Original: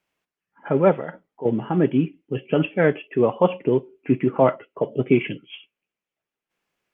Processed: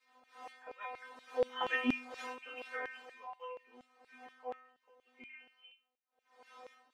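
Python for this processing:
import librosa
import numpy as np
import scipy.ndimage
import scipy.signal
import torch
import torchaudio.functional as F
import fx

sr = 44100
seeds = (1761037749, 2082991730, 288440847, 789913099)

y = fx.dmg_wind(x, sr, seeds[0], corner_hz=410.0, level_db=-26.0)
y = fx.doppler_pass(y, sr, speed_mps=20, closest_m=2.2, pass_at_s=1.77)
y = fx.high_shelf(y, sr, hz=2700.0, db=11.0)
y = fx.stiff_resonator(y, sr, f0_hz=250.0, decay_s=0.48, stiffness=0.002)
y = fx.filter_lfo_highpass(y, sr, shape='saw_down', hz=4.2, low_hz=610.0, high_hz=2700.0, q=1.4)
y = y * 10.0 ** (15.5 / 20.0)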